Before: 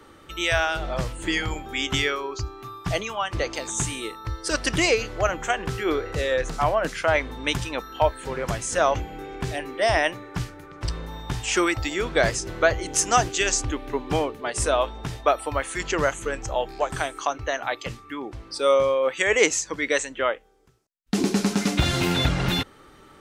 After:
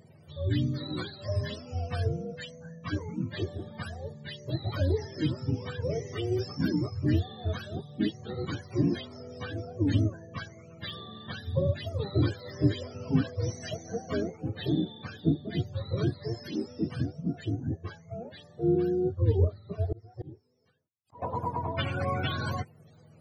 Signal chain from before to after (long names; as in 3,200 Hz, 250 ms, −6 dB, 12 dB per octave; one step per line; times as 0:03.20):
frequency axis turned over on the octave scale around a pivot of 440 Hz
0:19.80–0:21.22: volume swells 447 ms
level −5.5 dB